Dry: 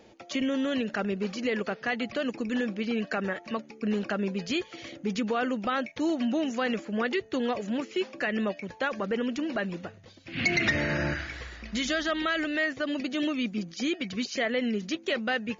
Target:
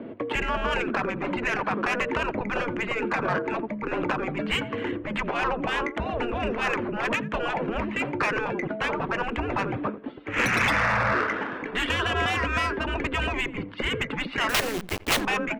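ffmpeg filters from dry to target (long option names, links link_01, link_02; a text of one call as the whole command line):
ffmpeg -i in.wav -filter_complex "[0:a]highpass=frequency=420:width_type=q:width=0.5412,highpass=frequency=420:width_type=q:width=1.307,lowpass=frequency=3400:width_type=q:width=0.5176,lowpass=frequency=3400:width_type=q:width=0.7071,lowpass=frequency=3400:width_type=q:width=1.932,afreqshift=-230,asplit=2[link_01][link_02];[link_02]adynamicsmooth=sensitivity=5.5:basefreq=1800,volume=1dB[link_03];[link_01][link_03]amix=inputs=2:normalize=0,equalizer=frequency=250:width_type=o:width=1:gain=11,equalizer=frequency=500:width_type=o:width=1:gain=7,equalizer=frequency=1000:width_type=o:width=1:gain=5,asettb=1/sr,asplit=3[link_04][link_05][link_06];[link_04]atrim=end=14.494[link_07];[link_05]atrim=start=14.49:end=15.21,asetpts=PTS-STARTPTS,afade=type=in:duration=0.004:curve=qsin,afade=type=out:start_time=0.716:duration=0.004:curve=qsin,acrusher=bits=3:dc=4:mix=0:aa=0.000001[link_08];[link_06]atrim=start=15.206[link_09];[link_07][link_08]acrossfade=duration=0.004:curve1=hsin:curve2=qsin[link_10];[link_10][link_09]acrossfade=duration=0.004:curve1=qsin:curve2=hsin,asplit=2[link_11][link_12];[link_12]adelay=86,lowpass=frequency=1500:poles=1,volume=-19.5dB,asplit=2[link_13][link_14];[link_14]adelay=86,lowpass=frequency=1500:poles=1,volume=0.23[link_15];[link_11][link_13][link_15]amix=inputs=3:normalize=0,afftfilt=real='re*lt(hypot(re,im),0.282)':imag='im*lt(hypot(re,im),0.282)':win_size=1024:overlap=0.75,asoftclip=type=tanh:threshold=-19dB,volume=5dB" out.wav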